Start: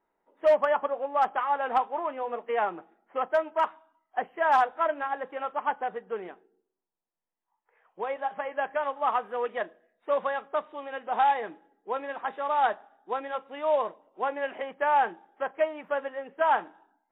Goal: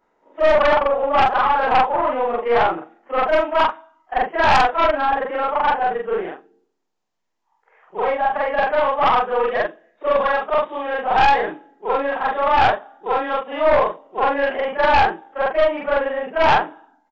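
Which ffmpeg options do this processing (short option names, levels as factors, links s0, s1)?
-af "afftfilt=real='re':imag='-im':win_size=4096:overlap=0.75,aresample=16000,aresample=44100,aeval=exprs='0.158*(cos(1*acos(clip(val(0)/0.158,-1,1)))-cos(1*PI/2))+0.0398*(cos(4*acos(clip(val(0)/0.158,-1,1)))-cos(4*PI/2))+0.0501*(cos(5*acos(clip(val(0)/0.158,-1,1)))-cos(5*PI/2))':c=same,volume=2.66"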